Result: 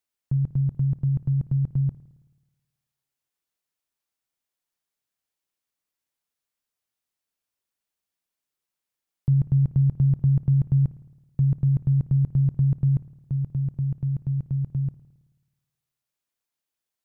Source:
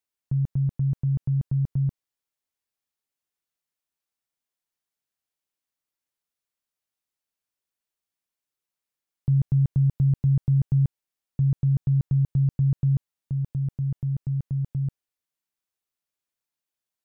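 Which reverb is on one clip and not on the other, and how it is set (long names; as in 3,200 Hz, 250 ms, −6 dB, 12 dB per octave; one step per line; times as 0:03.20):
spring reverb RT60 1.2 s, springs 54 ms, chirp 70 ms, DRR 15 dB
level +1.5 dB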